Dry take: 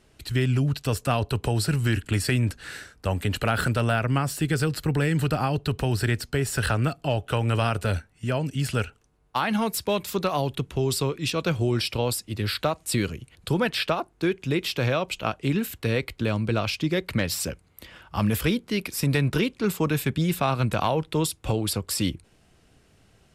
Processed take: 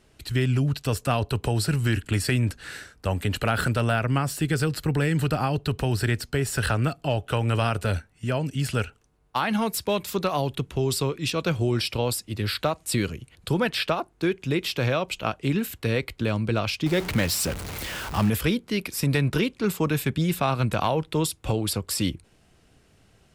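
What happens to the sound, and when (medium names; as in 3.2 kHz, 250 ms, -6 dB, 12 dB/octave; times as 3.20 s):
16.86–18.30 s: jump at every zero crossing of -28.5 dBFS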